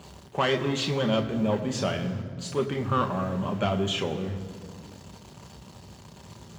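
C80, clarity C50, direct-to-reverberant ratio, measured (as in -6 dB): 11.5 dB, 11.0 dB, 4.0 dB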